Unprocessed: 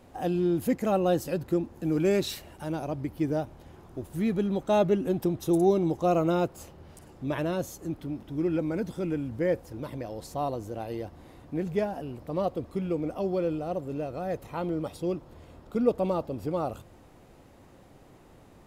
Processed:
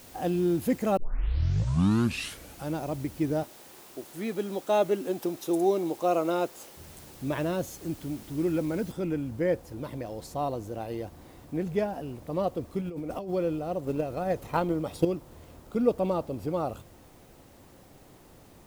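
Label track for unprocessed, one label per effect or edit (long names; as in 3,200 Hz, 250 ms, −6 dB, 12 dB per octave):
0.970000	0.970000	tape start 1.78 s
3.430000	6.770000	high-pass filter 320 Hz
8.920000	8.920000	noise floor change −52 dB −63 dB
12.810000	13.310000	compressor whose output falls as the input rises −35 dBFS
13.830000	15.050000	transient designer attack +12 dB, sustain +3 dB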